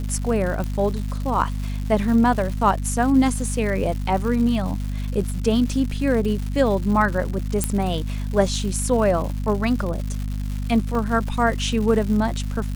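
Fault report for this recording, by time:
crackle 270 per s -29 dBFS
hum 50 Hz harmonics 5 -26 dBFS
0.64 s: pop -16 dBFS
7.64 s: pop -6 dBFS
10.95 s: dropout 2.2 ms

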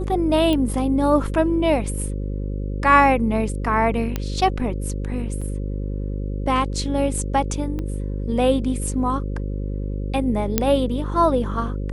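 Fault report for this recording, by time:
buzz 50 Hz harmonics 11 -26 dBFS
0.53 s: pop -11 dBFS
4.16 s: pop -10 dBFS
5.41–5.42 s: dropout 5.4 ms
7.79 s: pop -18 dBFS
10.58 s: pop -2 dBFS

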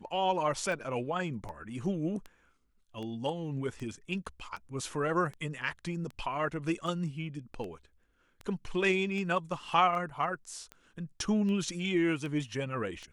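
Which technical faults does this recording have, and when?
tick 78 rpm

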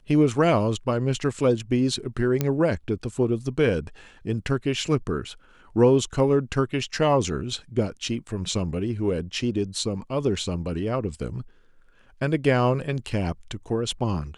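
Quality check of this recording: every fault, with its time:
2.41 s: pop -9 dBFS

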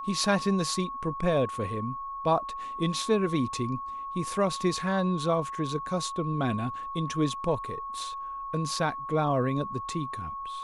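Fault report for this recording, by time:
whine 1.1 kHz -34 dBFS

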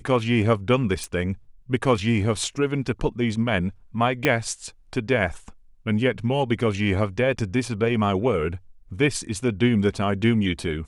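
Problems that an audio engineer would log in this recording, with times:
1.04 s: pop
4.25 s: pop -6 dBFS

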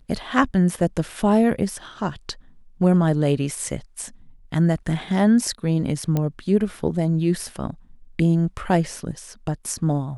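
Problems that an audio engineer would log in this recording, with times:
6.17 s: pop -11 dBFS

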